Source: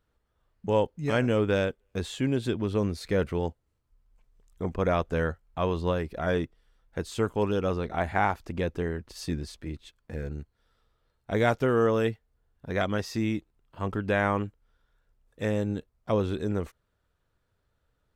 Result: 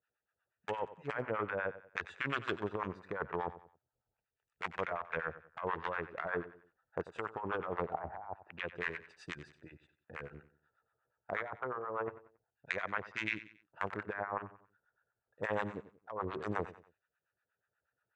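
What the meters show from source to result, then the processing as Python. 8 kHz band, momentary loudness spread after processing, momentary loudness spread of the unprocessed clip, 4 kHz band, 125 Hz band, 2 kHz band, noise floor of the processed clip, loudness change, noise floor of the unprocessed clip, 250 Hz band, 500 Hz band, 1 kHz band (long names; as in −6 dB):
below −15 dB, 11 LU, 13 LU, −11.0 dB, −18.0 dB, −4.0 dB, below −85 dBFS, −11.0 dB, −75 dBFS, −16.5 dB, −12.5 dB, −6.5 dB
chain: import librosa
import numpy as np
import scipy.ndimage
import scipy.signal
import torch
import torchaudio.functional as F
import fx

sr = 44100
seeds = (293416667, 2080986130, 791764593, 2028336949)

p1 = fx.wiener(x, sr, points=41)
p2 = fx.filter_lfo_bandpass(p1, sr, shape='saw_down', hz=0.24, low_hz=850.0, high_hz=2500.0, q=1.3)
p3 = 10.0 ** (-21.5 / 20.0) * np.tanh(p2 / 10.0 ** (-21.5 / 20.0))
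p4 = p2 + F.gain(torch.from_numpy(p3), -4.0).numpy()
p5 = fx.graphic_eq(p4, sr, hz=(250, 500, 1000, 2000, 8000), db=(-9, -3, 5, 5, 12))
p6 = fx.harmonic_tremolo(p5, sr, hz=8.3, depth_pct=100, crossover_hz=710.0)
p7 = fx.env_lowpass_down(p6, sr, base_hz=950.0, full_db=-31.0)
p8 = scipy.signal.sosfilt(scipy.signal.butter(2, 93.0, 'highpass', fs=sr, output='sos'), p7)
p9 = fx.low_shelf(p8, sr, hz=200.0, db=3.5)
p10 = fx.over_compress(p9, sr, threshold_db=-42.0, ratio=-1.0)
p11 = fx.echo_feedback(p10, sr, ms=92, feedback_pct=36, wet_db=-15)
y = F.gain(torch.from_numpy(p11), 4.5).numpy()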